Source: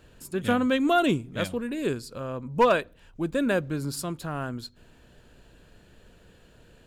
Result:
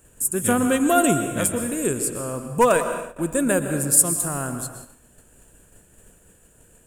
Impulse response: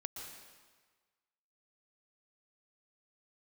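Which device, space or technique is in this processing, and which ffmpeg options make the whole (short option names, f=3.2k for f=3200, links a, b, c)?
keyed gated reverb: -filter_complex "[0:a]highshelf=f=6.1k:t=q:w=3:g=13.5,asplit=3[a][b][c];[1:a]atrim=start_sample=2205[d];[b][d]afir=irnorm=-1:irlink=0[e];[c]apad=whole_len=302805[f];[e][f]sidechaingate=range=-33dB:threshold=-50dB:ratio=16:detection=peak,volume=5.5dB[g];[a][g]amix=inputs=2:normalize=0,volume=-3.5dB"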